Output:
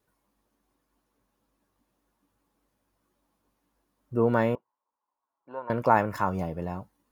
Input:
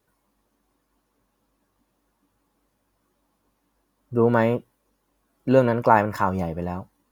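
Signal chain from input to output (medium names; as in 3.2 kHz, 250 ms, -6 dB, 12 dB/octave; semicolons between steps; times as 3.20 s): 4.55–5.70 s: band-pass filter 960 Hz, Q 5.2; trim -4.5 dB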